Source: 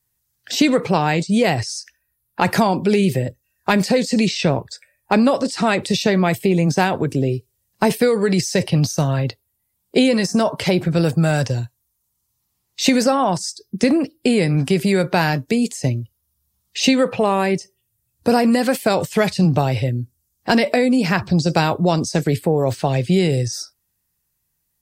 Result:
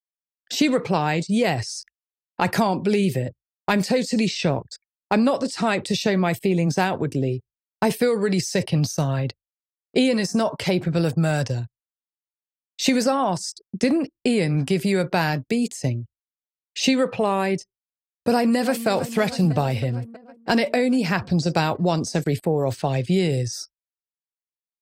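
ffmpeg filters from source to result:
ffmpeg -i in.wav -filter_complex "[0:a]asplit=2[link_01][link_02];[link_02]afade=type=in:start_time=18.29:duration=0.01,afade=type=out:start_time=18.88:duration=0.01,aecho=0:1:320|640|960|1280|1600|1920|2240|2560|2880|3200|3520:0.223872|0.167904|0.125928|0.094446|0.0708345|0.0531259|0.0398444|0.0298833|0.0224125|0.0168094|0.012607[link_03];[link_01][link_03]amix=inputs=2:normalize=0,anlmdn=0.631,agate=range=-33dB:threshold=-33dB:ratio=3:detection=peak,volume=-4dB" out.wav

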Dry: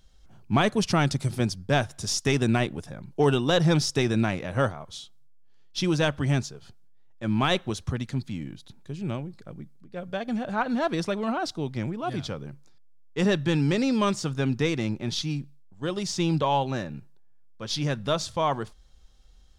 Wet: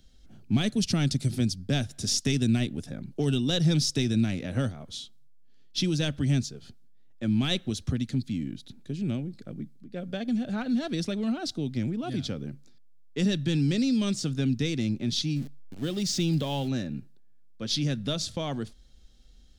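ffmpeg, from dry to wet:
ffmpeg -i in.wav -filter_complex "[0:a]asettb=1/sr,asplit=3[link_01][link_02][link_03];[link_01]atrim=end=15.364[link_04];[link_02]atrim=start=15.36:end=16.69,asetpts=PTS-STARTPTS,afade=type=in:duration=0.004:curve=qsin,afade=type=out:start_time=1.326:duration=0.004:curve=qsin,aeval=exprs='val(0)+0.5*0.0119*sgn(val(0))':channel_layout=same[link_05];[link_03]atrim=start=16.686[link_06];[link_04][link_05]acrossfade=duration=0.004:curve1=hsin:curve2=qsin[link_07];[link_07][link_06]acrossfade=duration=0.004:curve1=qsin:curve2=hsin,equalizer=frequency=250:width_type=o:width=0.67:gain=9,equalizer=frequency=1000:width_type=o:width=0.67:gain=-11,equalizer=frequency=4000:width_type=o:width=0.67:gain=3,acrossover=split=170|3000[link_08][link_09][link_10];[link_09]acompressor=threshold=-32dB:ratio=3[link_11];[link_08][link_11][link_10]amix=inputs=3:normalize=0" out.wav

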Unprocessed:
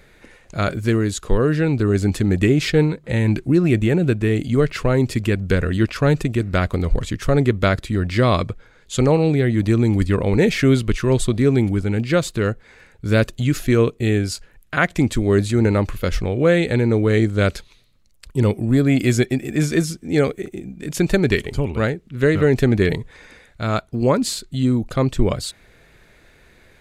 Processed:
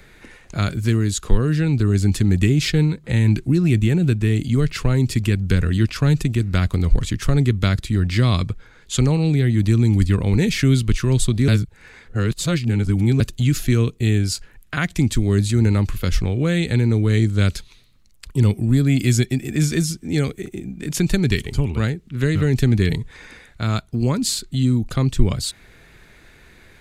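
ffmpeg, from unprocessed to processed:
ffmpeg -i in.wav -filter_complex "[0:a]asplit=3[link_01][link_02][link_03];[link_01]atrim=end=11.482[link_04];[link_02]atrim=start=11.478:end=13.202,asetpts=PTS-STARTPTS,areverse[link_05];[link_03]atrim=start=13.198[link_06];[link_04][link_05]acrossfade=duration=0.004:curve1=hsin:curve2=hsin[link_07];[link_07][link_06]acrossfade=duration=0.004:curve1=hsin:curve2=hsin,equalizer=frequency=560:width=2.1:gain=-5.5,acrossover=split=210|3000[link_08][link_09][link_10];[link_09]acompressor=threshold=-35dB:ratio=2[link_11];[link_08][link_11][link_10]amix=inputs=3:normalize=0,volume=3.5dB" out.wav

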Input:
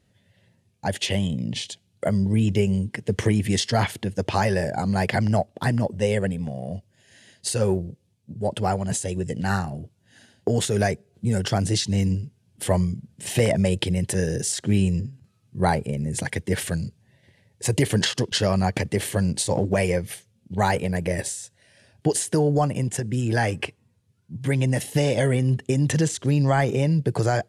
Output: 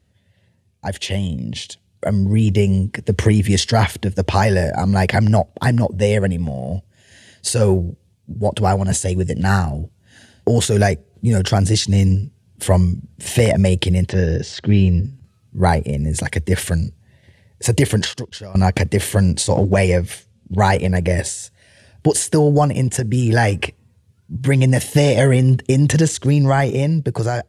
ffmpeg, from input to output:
ffmpeg -i in.wav -filter_complex "[0:a]asettb=1/sr,asplit=3[link_01][link_02][link_03];[link_01]atrim=end=14.094[link_04];[link_02]atrim=start=14.09:end=15.04,asetpts=PTS-STARTPTS,afade=type=in:duration=0.004:curve=qsin,afade=type=out:start_time=0.946:duration=0.004:curve=qsin,lowpass=frequency=4700:width=0.5412,lowpass=frequency=4700:width=1.3066[link_05];[link_03]atrim=start=15.036[link_06];[link_04][link_05]acrossfade=duration=0.004:curve1=hsin:curve2=qsin[link_07];[link_07][link_06]acrossfade=duration=0.004:curve1=qsin:curve2=hsin,asettb=1/sr,asplit=3[link_08][link_09][link_10];[link_08]atrim=end=19.324[link_11];[link_09]atrim=start=19.32:end=21.4,asetpts=PTS-STARTPTS,afade=type=in:duration=0.004:curve=qsin,afade=type=out:start_time=2.076:duration=0.004:curve=qsin,lowpass=10000[link_12];[link_10]atrim=start=21.396[link_13];[link_11][link_12]acrossfade=duration=0.004:curve1=hsin:curve2=qsin[link_14];[link_14][link_13]acrossfade=duration=0.004:curve1=qsin:curve2=hsin,asplit=2[link_15][link_16];[link_15]atrim=end=18.55,asetpts=PTS-STARTPTS,afade=type=out:start_time=17.87:duration=0.68:curve=qua:silence=0.0944061[link_17];[link_16]atrim=start=18.55,asetpts=PTS-STARTPTS,afade=type=in:duration=0.004:curve=hsin:silence=0.0944061[link_18];[link_17][link_18]concat=n=2:v=0:a=1,equalizer=frequency=73:width_type=o:width=0.55:gain=11.5,dynaudnorm=framelen=870:gausssize=5:maxgain=11.5dB" out.wav

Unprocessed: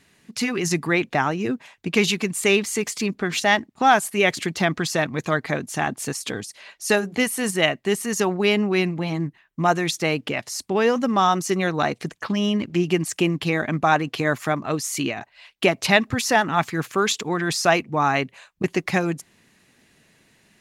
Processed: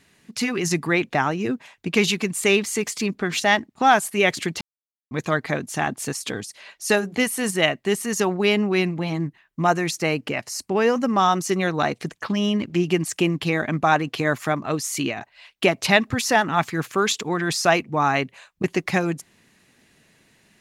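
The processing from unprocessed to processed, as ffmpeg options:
ffmpeg -i in.wav -filter_complex "[0:a]asettb=1/sr,asplit=3[link_01][link_02][link_03];[link_01]atrim=end=9.704[link_04];[link_02]atrim=start=9.7:end=11.2,asetpts=PTS-STARTPTS,afade=type=in:duration=0.004:curve=qsin,afade=type=out:start_time=1.496:duration=0.004:curve=qsin,equalizer=frequency=3500:width_type=o:width=0.23:gain=-9[link_05];[link_03]atrim=start=11.196[link_06];[link_04][link_05]acrossfade=duration=0.004:curve1=hsin:curve2=qsin[link_07];[link_07][link_06]acrossfade=duration=0.004:curve1=qsin:curve2=hsin,asplit=3[link_08][link_09][link_10];[link_08]atrim=end=4.61,asetpts=PTS-STARTPTS,afade=type=out:start_time=4.606:duration=0.004:curve=hsin[link_11];[link_09]atrim=start=4.61:end=5.11,asetpts=PTS-STARTPTS,volume=0[link_12];[link_10]atrim=start=5.11,asetpts=PTS-STARTPTS,afade=type=in:duration=0.004:curve=hsin[link_13];[link_11][link_12][link_13]concat=n=3:v=0:a=1" out.wav

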